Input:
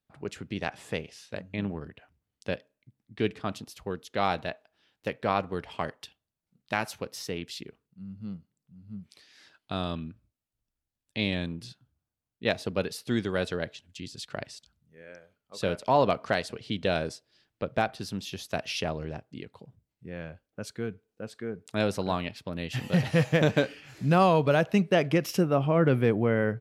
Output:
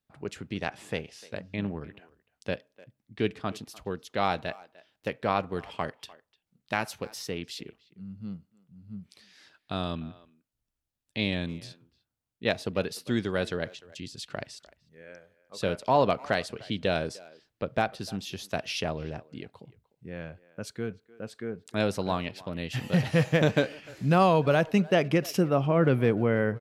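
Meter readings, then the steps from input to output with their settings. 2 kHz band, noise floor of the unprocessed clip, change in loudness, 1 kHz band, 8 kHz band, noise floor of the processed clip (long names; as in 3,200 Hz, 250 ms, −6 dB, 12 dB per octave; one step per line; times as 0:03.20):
0.0 dB, below −85 dBFS, 0.0 dB, 0.0 dB, 0.0 dB, −85 dBFS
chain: far-end echo of a speakerphone 300 ms, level −20 dB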